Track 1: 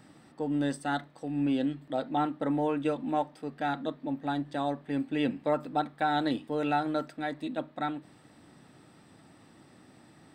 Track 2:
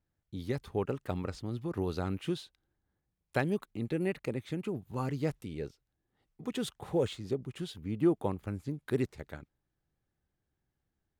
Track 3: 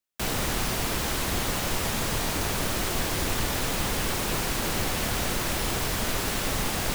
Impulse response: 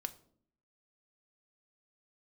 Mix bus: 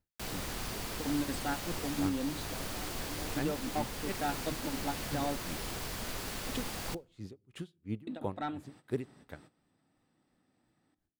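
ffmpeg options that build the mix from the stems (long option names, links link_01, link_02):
-filter_complex "[0:a]asoftclip=type=tanh:threshold=-22dB,adelay=600,volume=-3dB,asplit=3[link_01][link_02][link_03];[link_01]atrim=end=5.45,asetpts=PTS-STARTPTS,afade=type=out:start_time=5.446:duration=0.004:curve=hsin[link_04];[link_02]atrim=start=5.45:end=8.07,asetpts=PTS-STARTPTS,volume=0[link_05];[link_03]atrim=start=8.07,asetpts=PTS-STARTPTS,afade=type=in:duration=0.004:curve=hsin[link_06];[link_04][link_05][link_06]concat=n=3:v=0:a=1,asplit=2[link_07][link_08];[link_08]volume=-15.5dB[link_09];[1:a]aeval=exprs='val(0)*pow(10,-38*(0.5-0.5*cos(2*PI*2.9*n/s))/20)':channel_layout=same,volume=-1dB,asplit=3[link_10][link_11][link_12];[link_11]volume=-13dB[link_13];[2:a]equalizer=frequency=4600:width=7.8:gain=3.5,volume=-13.5dB,asplit=2[link_14][link_15];[link_15]volume=-9.5dB[link_16];[link_12]apad=whole_len=482632[link_17];[link_07][link_17]sidechaingate=range=-33dB:threshold=-59dB:ratio=16:detection=peak[link_18];[3:a]atrim=start_sample=2205[link_19];[link_09][link_13][link_16]amix=inputs=3:normalize=0[link_20];[link_20][link_19]afir=irnorm=-1:irlink=0[link_21];[link_18][link_10][link_14][link_21]amix=inputs=4:normalize=0,alimiter=limit=-22dB:level=0:latency=1:release=483"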